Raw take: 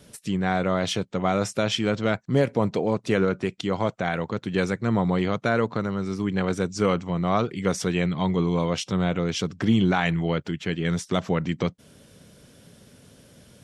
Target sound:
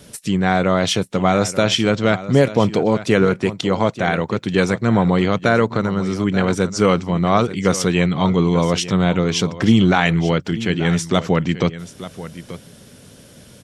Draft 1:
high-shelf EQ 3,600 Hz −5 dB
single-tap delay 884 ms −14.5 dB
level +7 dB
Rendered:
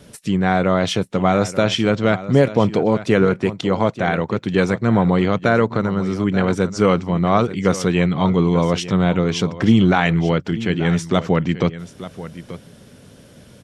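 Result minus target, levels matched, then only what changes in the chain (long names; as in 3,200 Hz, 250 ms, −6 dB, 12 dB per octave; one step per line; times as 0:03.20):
8,000 Hz band −5.5 dB
change: high-shelf EQ 3,600 Hz +2.5 dB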